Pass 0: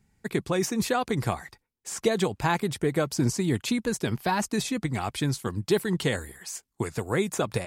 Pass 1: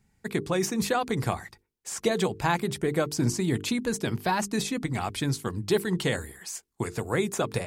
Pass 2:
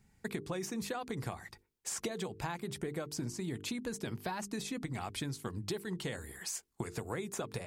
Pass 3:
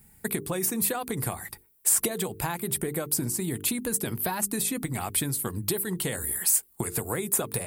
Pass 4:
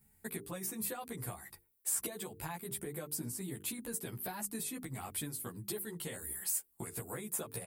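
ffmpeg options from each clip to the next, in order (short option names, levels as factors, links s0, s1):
-af "bandreject=f=50:t=h:w=6,bandreject=f=100:t=h:w=6,bandreject=f=150:t=h:w=6,bandreject=f=200:t=h:w=6,bandreject=f=250:t=h:w=6,bandreject=f=300:t=h:w=6,bandreject=f=350:t=h:w=6,bandreject=f=400:t=h:w=6,bandreject=f=450:t=h:w=6"
-af "acompressor=threshold=0.0178:ratio=10"
-af "aexciter=amount=6.9:drive=7:freq=8600,volume=2.37"
-filter_complex "[0:a]asplit=2[s0][s1];[s1]adelay=11.9,afreqshift=1.4[s2];[s0][s2]amix=inputs=2:normalize=1,volume=0.355"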